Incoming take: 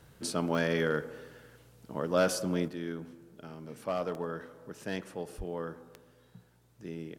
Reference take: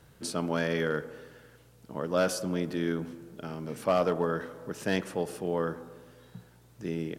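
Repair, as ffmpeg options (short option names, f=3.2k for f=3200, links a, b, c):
-filter_complex "[0:a]adeclick=t=4,asplit=3[a][b][c];[a]afade=t=out:st=5.37:d=0.02[d];[b]highpass=f=140:w=0.5412,highpass=f=140:w=1.3066,afade=t=in:st=5.37:d=0.02,afade=t=out:st=5.49:d=0.02[e];[c]afade=t=in:st=5.49:d=0.02[f];[d][e][f]amix=inputs=3:normalize=0,asetnsamples=n=441:p=0,asendcmd='2.68 volume volume 7.5dB',volume=0dB"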